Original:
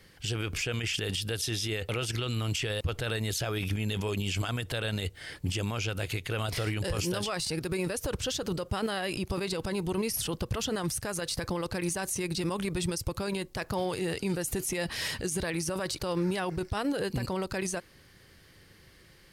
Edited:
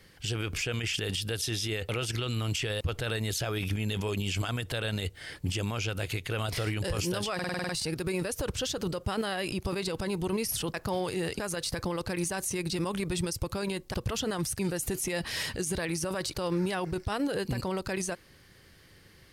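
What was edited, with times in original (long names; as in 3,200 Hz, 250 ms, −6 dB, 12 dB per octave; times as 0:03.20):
0:07.34: stutter 0.05 s, 8 plays
0:10.39–0:11.04: swap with 0:13.59–0:14.24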